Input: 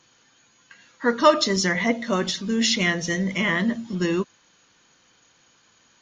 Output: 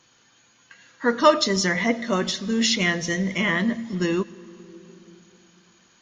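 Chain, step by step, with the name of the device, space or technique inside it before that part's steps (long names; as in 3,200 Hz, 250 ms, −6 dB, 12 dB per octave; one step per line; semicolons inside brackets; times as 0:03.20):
compressed reverb return (on a send at −7.5 dB: convolution reverb RT60 2.0 s, pre-delay 99 ms + downward compressor 6 to 1, threshold −33 dBFS, peak gain reduction 18.5 dB)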